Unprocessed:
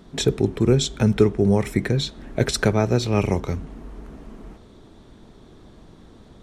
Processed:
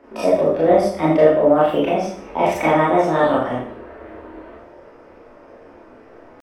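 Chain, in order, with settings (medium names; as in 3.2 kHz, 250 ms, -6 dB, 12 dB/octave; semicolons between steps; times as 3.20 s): pitch shift +6.5 st; three-band isolator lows -15 dB, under 310 Hz, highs -22 dB, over 2.5 kHz; Schroeder reverb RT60 0.54 s, combs from 25 ms, DRR -7.5 dB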